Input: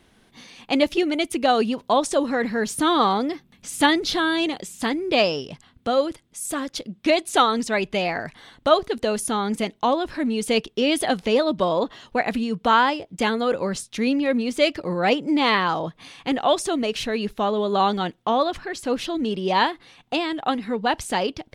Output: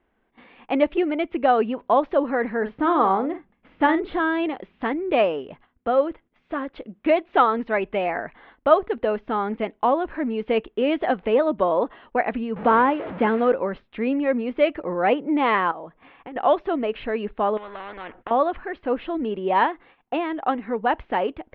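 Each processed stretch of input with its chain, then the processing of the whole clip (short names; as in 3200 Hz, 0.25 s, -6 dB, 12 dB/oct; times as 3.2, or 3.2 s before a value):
2.57–4.2 high shelf 2800 Hz -7.5 dB + doubler 47 ms -10 dB
12.56–13.52 delta modulation 32 kbps, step -27.5 dBFS + HPF 130 Hz + low shelf 280 Hz +10 dB
15.71–16.36 air absorption 160 m + compressor 16:1, threshold -32 dBFS
17.57–18.31 LPF 1700 Hz + compressor 4:1, threshold -24 dBFS + spectral compressor 4:1
whole clip: gate -47 dBFS, range -10 dB; Bessel low-pass 1600 Hz, order 8; bell 130 Hz -13.5 dB 1.4 oct; gain +2.5 dB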